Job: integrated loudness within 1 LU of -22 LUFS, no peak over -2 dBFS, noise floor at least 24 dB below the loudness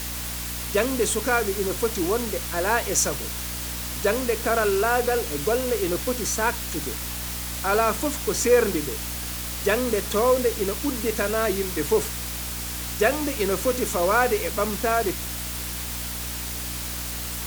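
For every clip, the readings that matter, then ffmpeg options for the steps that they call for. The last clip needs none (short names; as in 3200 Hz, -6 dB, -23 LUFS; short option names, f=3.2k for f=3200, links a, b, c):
hum 60 Hz; harmonics up to 300 Hz; hum level -34 dBFS; noise floor -31 dBFS; noise floor target -49 dBFS; loudness -24.5 LUFS; peak -5.5 dBFS; loudness target -22.0 LUFS
-> -af "bandreject=f=60:t=h:w=4,bandreject=f=120:t=h:w=4,bandreject=f=180:t=h:w=4,bandreject=f=240:t=h:w=4,bandreject=f=300:t=h:w=4"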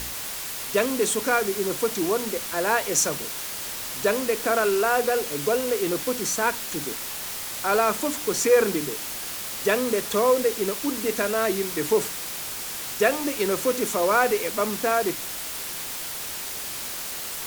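hum none; noise floor -33 dBFS; noise floor target -49 dBFS
-> -af "afftdn=nr=16:nf=-33"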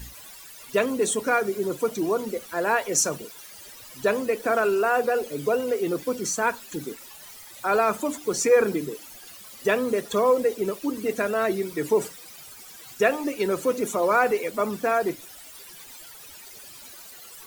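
noise floor -45 dBFS; noise floor target -49 dBFS
-> -af "afftdn=nr=6:nf=-45"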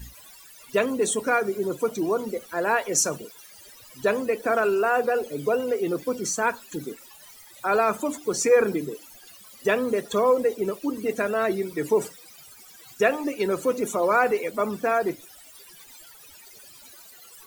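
noise floor -49 dBFS; loudness -24.5 LUFS; peak -6.0 dBFS; loudness target -22.0 LUFS
-> -af "volume=2.5dB"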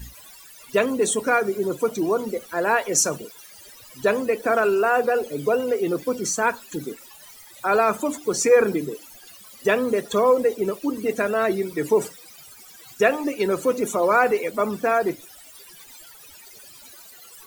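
loudness -22.0 LUFS; peak -3.5 dBFS; noise floor -46 dBFS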